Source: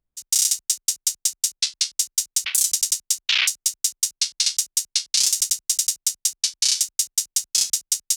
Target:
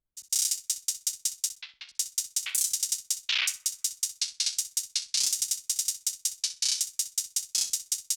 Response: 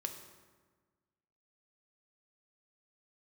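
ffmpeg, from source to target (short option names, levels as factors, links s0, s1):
-filter_complex "[0:a]asettb=1/sr,asplit=3[s0][s1][s2];[s0]atrim=end=1.494[s3];[s1]atrim=start=1.49:end=1.89,asetpts=PTS-STARTPTS,afade=t=in:d=0.004:c=qsin,afade=t=out:st=0.396:d=0.004:c=qsin,lowpass=f=2800:w=0.5412,lowpass=f=2800:w=1.3066[s4];[s2]atrim=start=1.886[s5];[s3][s4]acrossfade=d=0.004:c1=hsin:c2=qsin[s6];[s6][s5]acrossfade=d=0.004:c1=qsin:c2=hsin,aecho=1:1:63|126:0.2|0.0319,asplit=2[s7][s8];[1:a]atrim=start_sample=2205,lowpass=2000[s9];[s8][s9]afir=irnorm=-1:irlink=0,volume=0.168[s10];[s7][s10]amix=inputs=2:normalize=0,volume=0.422"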